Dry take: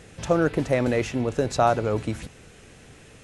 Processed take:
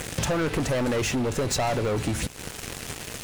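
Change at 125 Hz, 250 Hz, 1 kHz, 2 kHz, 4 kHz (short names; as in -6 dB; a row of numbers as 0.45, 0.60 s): 0.0, -1.5, -4.5, +1.0, +7.0 dB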